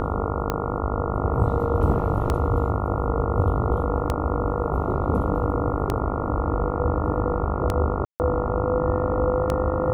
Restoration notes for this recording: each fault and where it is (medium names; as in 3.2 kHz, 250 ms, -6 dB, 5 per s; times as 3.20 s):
buzz 50 Hz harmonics 28 -28 dBFS
tick 33 1/3 rpm -10 dBFS
8.05–8.20 s: dropout 149 ms